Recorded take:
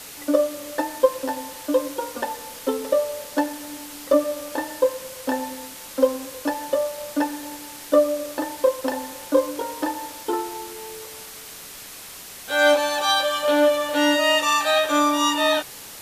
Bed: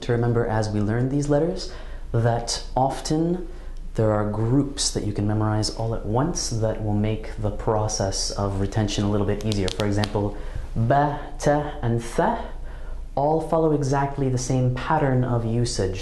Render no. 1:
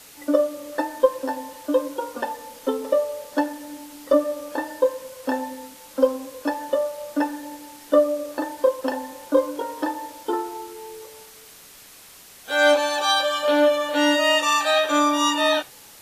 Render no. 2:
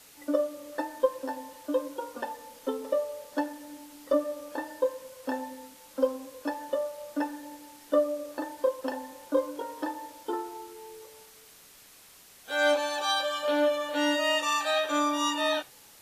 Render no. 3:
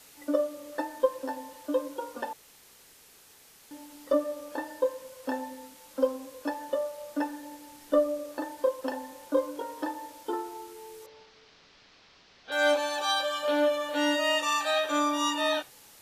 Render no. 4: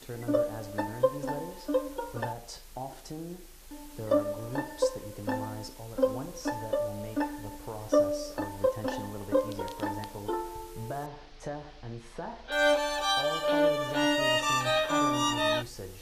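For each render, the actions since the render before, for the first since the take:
noise print and reduce 7 dB
gain -7.5 dB
2.33–3.71 room tone; 7.67–8.19 low shelf 140 Hz +8 dB; 11.06–12.52 steep low-pass 5200 Hz
add bed -18 dB

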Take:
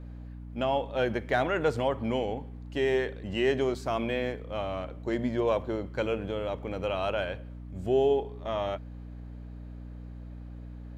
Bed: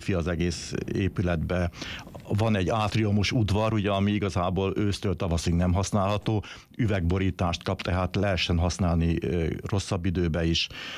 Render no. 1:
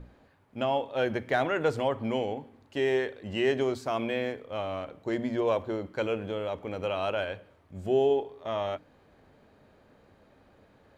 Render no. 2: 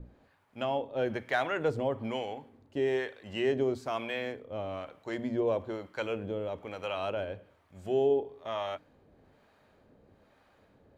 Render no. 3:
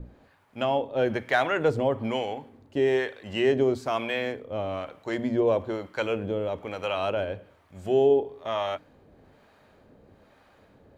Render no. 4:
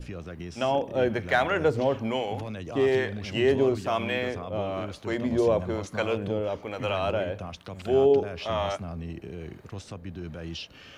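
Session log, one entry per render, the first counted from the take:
notches 60/120/180/240/300 Hz
harmonic tremolo 1.1 Hz, depth 70%, crossover 650 Hz
gain +6 dB
add bed -12 dB

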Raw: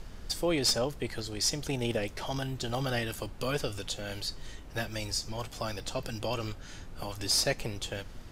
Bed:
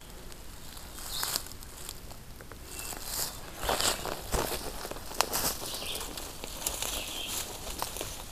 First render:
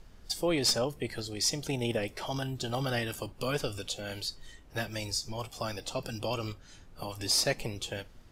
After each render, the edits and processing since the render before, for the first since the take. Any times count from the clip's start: noise print and reduce 9 dB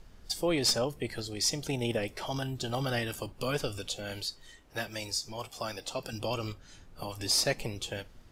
4.23–6.13 low shelf 200 Hz -8 dB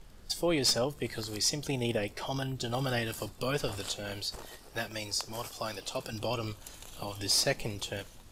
add bed -16 dB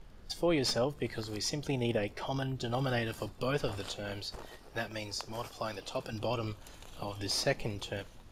high shelf 4700 Hz -11 dB; notch 7900 Hz, Q 16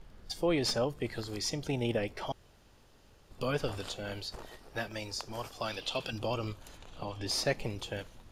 2.32–3.31 room tone; 5.6–6.1 bell 3200 Hz +7.5 dB -> +13.5 dB 1.1 oct; 6.77–7.27 bell 13000 Hz -14.5 dB 1.1 oct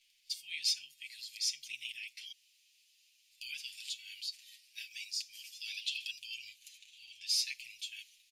elliptic high-pass 2400 Hz, stop band 50 dB; comb 7.4 ms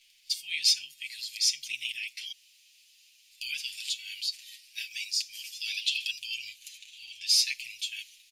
gain +8.5 dB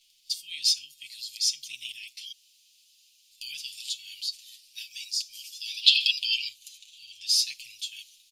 5.83–6.48 spectral gain 780–5300 Hz +12 dB; band shelf 1100 Hz -13.5 dB 2.5 oct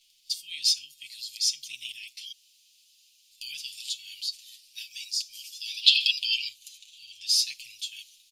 nothing audible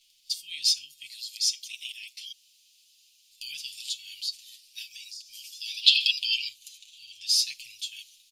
1.16–2.2 HPF 970 Hz; 4.94–5.61 compressor, threshold -39 dBFS

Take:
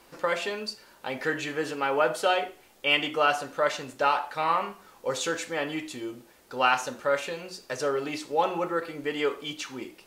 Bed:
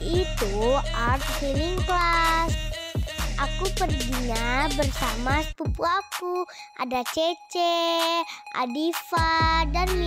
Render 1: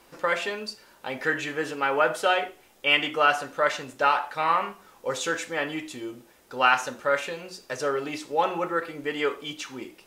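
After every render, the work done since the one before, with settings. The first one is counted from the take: notch 4400 Hz, Q 21; dynamic EQ 1700 Hz, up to +5 dB, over -36 dBFS, Q 1.2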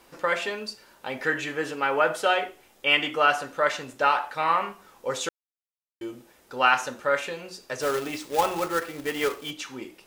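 5.29–6.01 mute; 7.81–9.51 companded quantiser 4-bit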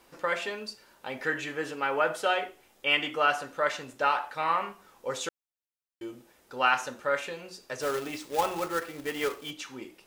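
gain -4 dB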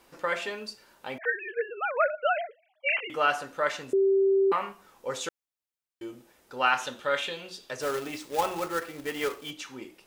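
1.18–3.1 sine-wave speech; 3.93–4.52 bleep 389 Hz -19 dBFS; 6.81–7.71 bell 3400 Hz +14.5 dB 0.47 oct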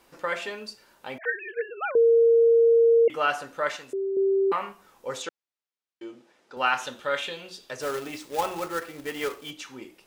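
1.95–3.08 bleep 462 Hz -14.5 dBFS; 3.76–4.17 low shelf 440 Hz -10.5 dB; 5.22–6.57 BPF 200–5600 Hz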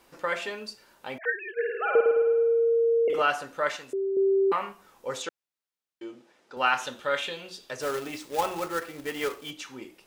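1.53–3.22 flutter echo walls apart 9.1 m, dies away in 1.2 s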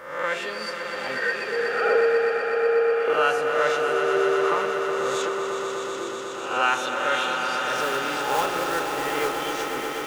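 spectral swells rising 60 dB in 0.78 s; swelling echo 0.123 s, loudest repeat 5, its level -8.5 dB

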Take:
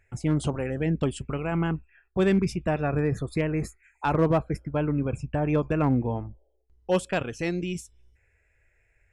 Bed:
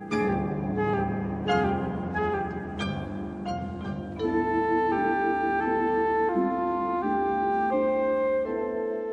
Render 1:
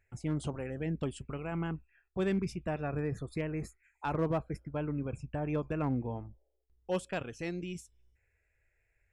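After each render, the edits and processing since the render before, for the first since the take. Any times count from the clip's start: gain -9 dB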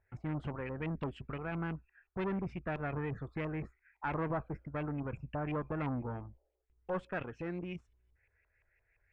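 tube stage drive 32 dB, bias 0.35; LFO low-pass saw up 5.8 Hz 960–2700 Hz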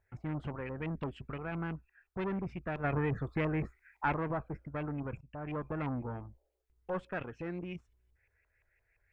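2.84–4.13 gain +5.5 dB; 5.21–5.79 fade in equal-power, from -18 dB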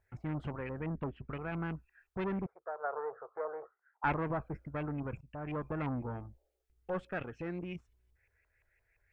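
0.8–1.32 LPF 1800 Hz; 2.46–4.04 elliptic band-pass 460–1400 Hz; 6.2–7.41 notch 1000 Hz, Q 7.5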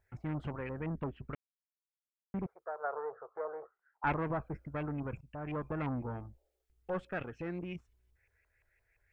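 1.35–2.34 mute; 2.96–4.07 air absorption 280 m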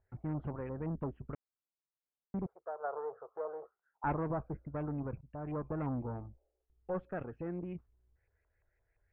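LPF 1100 Hz 12 dB/oct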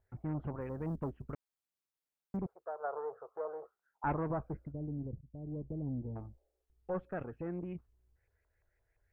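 0.61–2.37 short-mantissa float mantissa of 6-bit; 4.72–6.16 Gaussian blur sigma 18 samples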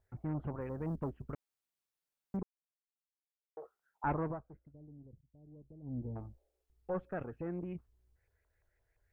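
2.43–3.57 mute; 4.25–5.98 dip -14.5 dB, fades 0.16 s

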